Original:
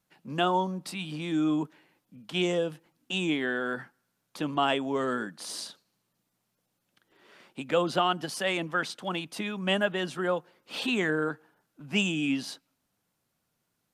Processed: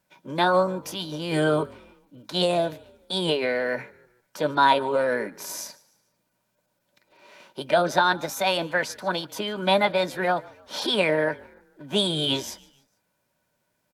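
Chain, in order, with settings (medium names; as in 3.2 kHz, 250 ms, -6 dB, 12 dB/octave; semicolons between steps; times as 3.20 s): formant shift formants +4 st; small resonant body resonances 590/950/1500/2400 Hz, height 12 dB, ringing for 65 ms; frequency-shifting echo 148 ms, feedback 44%, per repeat -44 Hz, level -23.5 dB; trim +3 dB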